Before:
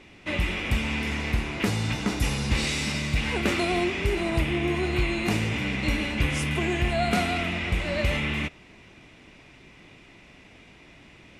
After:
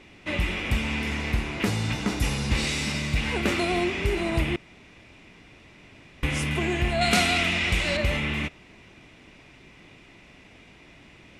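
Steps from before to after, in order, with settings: 4.56–6.23 room tone; 7.01–7.97 bell 6300 Hz +10.5 dB 3 oct

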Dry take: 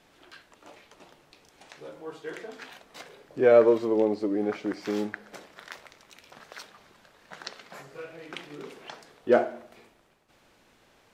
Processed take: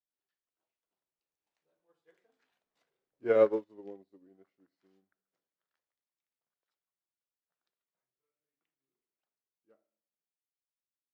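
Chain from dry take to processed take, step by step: Doppler pass-by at 2.47, 33 m/s, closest 24 m; upward expander 2.5:1, over -40 dBFS

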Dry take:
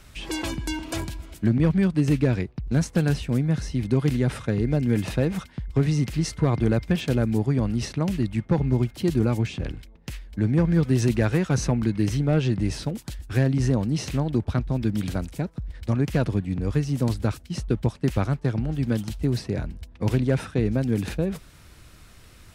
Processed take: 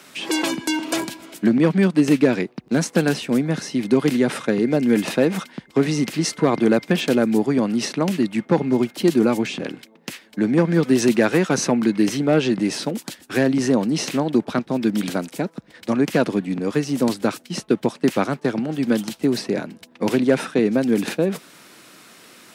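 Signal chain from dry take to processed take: HPF 210 Hz 24 dB/oct; gain +8 dB

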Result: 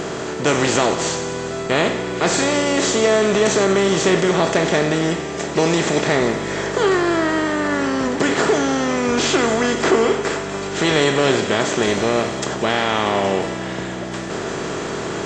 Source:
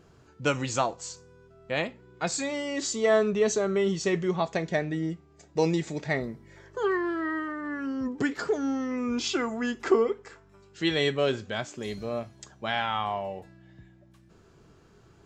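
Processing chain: per-bin compression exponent 0.4; in parallel at 0 dB: limiter -13 dBFS, peak gain reduction 7.5 dB; on the sum: thinning echo 93 ms, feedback 79%, high-pass 430 Hz, level -13.5 dB; gain -1.5 dB; AAC 32 kbps 24000 Hz

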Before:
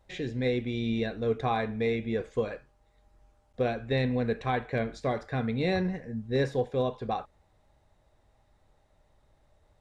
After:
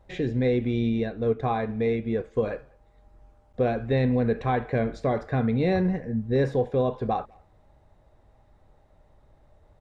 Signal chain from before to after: high shelf 2000 Hz -11 dB; in parallel at +3 dB: limiter -26 dBFS, peak gain reduction 8 dB; on the sum: speakerphone echo 0.2 s, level -28 dB; 0.89–2.43 upward expander 1.5:1, over -31 dBFS

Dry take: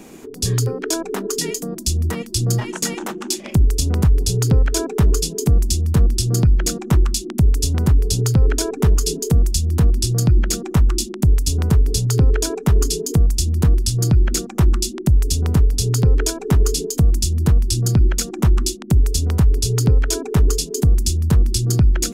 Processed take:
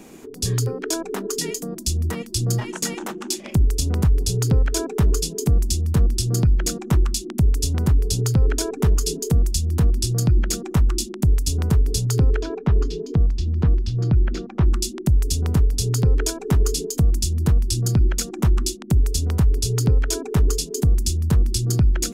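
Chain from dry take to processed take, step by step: 12.4–14.7 air absorption 250 m; gain -3 dB

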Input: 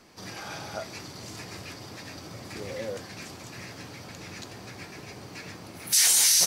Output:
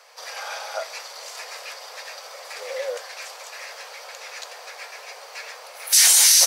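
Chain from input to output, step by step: elliptic high-pass 500 Hz, stop band 40 dB; gain +7 dB

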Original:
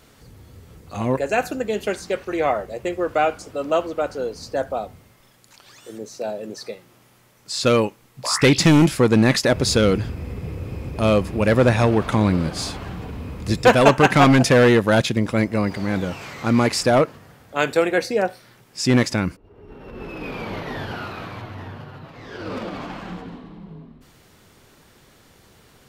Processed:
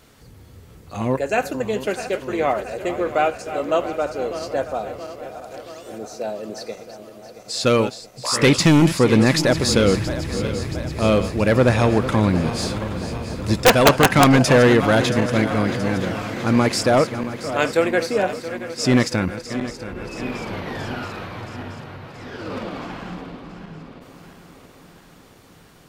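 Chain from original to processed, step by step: regenerating reverse delay 0.338 s, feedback 78%, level -12 dB; wrapped overs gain 2.5 dB

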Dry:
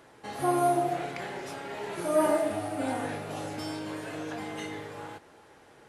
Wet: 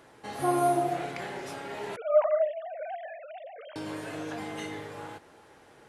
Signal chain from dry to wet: 1.96–3.76 sine-wave speech

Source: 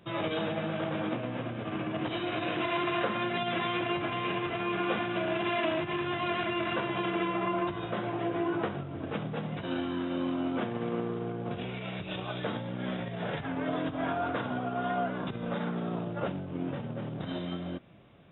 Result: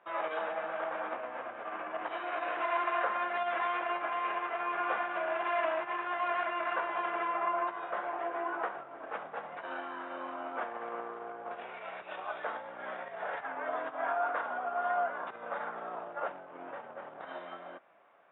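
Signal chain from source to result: Butterworth band-pass 1100 Hz, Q 0.91; gain +2.5 dB

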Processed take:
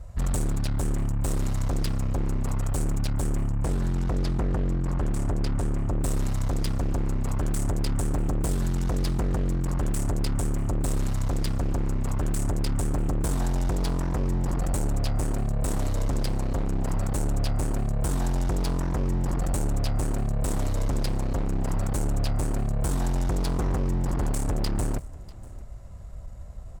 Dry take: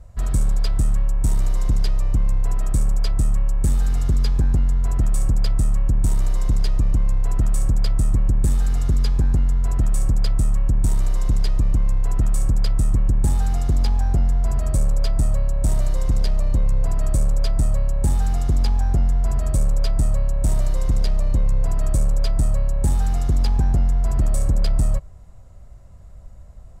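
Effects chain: 3.44–6.01 high shelf 5400 Hz -11 dB; added harmonics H 5 -7 dB, 6 -13 dB, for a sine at -12 dBFS; echo 0.644 s -22 dB; gain -7.5 dB

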